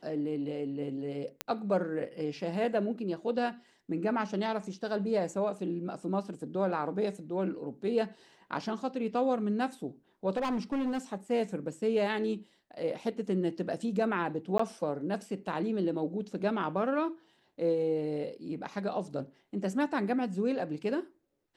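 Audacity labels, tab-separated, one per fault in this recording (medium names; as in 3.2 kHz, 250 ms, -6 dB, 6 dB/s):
1.410000	1.410000	pop -15 dBFS
10.360000	10.990000	clipped -28 dBFS
14.580000	14.590000	dropout 14 ms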